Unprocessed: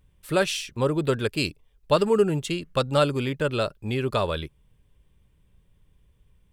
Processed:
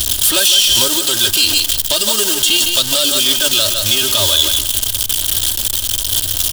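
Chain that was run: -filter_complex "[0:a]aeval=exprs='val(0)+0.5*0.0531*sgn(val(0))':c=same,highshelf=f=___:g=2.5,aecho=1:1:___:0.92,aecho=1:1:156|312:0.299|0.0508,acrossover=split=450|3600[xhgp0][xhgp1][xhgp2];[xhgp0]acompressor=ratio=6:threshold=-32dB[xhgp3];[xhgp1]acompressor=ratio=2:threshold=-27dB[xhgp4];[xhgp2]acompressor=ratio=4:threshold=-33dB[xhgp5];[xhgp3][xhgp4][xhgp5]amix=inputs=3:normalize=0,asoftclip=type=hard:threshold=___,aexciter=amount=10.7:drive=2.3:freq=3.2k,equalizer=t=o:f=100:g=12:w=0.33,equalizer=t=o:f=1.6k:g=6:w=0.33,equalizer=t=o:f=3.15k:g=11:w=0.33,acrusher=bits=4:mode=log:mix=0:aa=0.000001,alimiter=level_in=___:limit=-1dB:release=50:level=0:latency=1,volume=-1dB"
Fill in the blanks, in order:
4.9k, 3.2, -18.5dB, 6.5dB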